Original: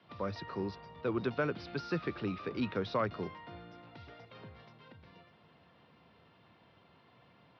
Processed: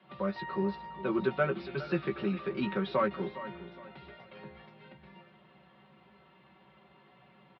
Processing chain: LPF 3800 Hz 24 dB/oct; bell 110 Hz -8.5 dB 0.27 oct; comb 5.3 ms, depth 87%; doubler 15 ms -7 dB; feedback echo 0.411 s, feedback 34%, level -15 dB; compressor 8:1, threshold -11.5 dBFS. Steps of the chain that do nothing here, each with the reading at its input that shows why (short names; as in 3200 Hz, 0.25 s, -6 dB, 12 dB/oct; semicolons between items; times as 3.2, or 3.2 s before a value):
compressor, threshold -11.5 dBFS: input peak -15.0 dBFS